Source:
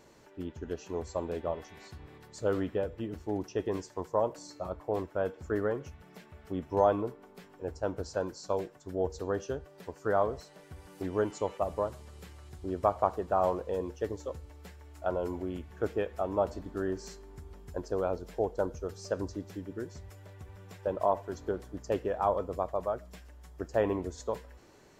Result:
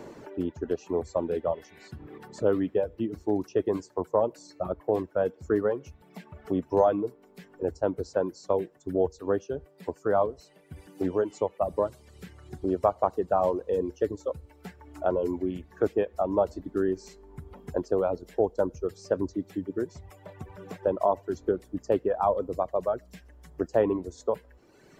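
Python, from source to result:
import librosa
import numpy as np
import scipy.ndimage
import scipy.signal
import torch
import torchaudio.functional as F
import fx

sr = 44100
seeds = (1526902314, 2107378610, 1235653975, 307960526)

y = fx.tremolo(x, sr, hz=3.4, depth=0.39, at=(9.03, 11.73))
y = fx.dereverb_blind(y, sr, rt60_s=1.6)
y = fx.peak_eq(y, sr, hz=330.0, db=8.0, octaves=2.7)
y = fx.band_squash(y, sr, depth_pct=40)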